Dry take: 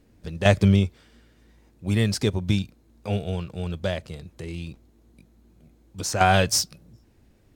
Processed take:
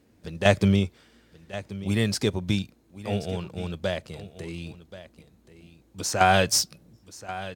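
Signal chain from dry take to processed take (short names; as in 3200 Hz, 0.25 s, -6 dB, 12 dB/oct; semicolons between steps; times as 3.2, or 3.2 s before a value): HPF 140 Hz 6 dB/oct; echo 1.08 s -15.5 dB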